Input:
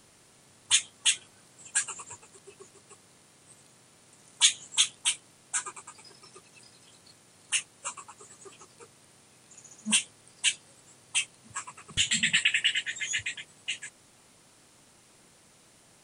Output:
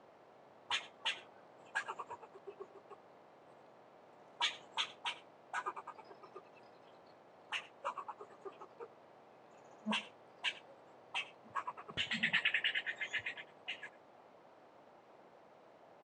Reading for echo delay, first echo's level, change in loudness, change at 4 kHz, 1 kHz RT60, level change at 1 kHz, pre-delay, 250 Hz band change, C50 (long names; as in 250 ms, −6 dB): 96 ms, −20.0 dB, −12.0 dB, −12.5 dB, no reverb audible, +2.0 dB, no reverb audible, −5.5 dB, no reverb audible